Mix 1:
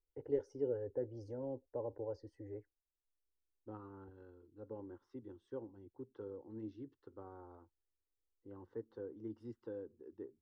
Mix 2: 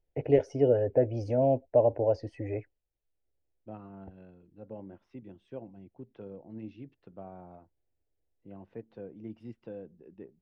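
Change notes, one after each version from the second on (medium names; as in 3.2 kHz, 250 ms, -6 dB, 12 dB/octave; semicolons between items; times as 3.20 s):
first voice +11.5 dB; master: remove static phaser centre 660 Hz, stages 6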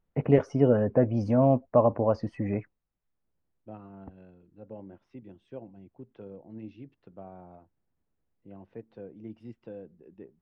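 first voice: remove static phaser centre 480 Hz, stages 4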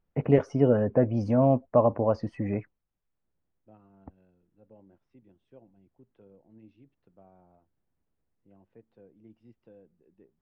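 second voice -11.5 dB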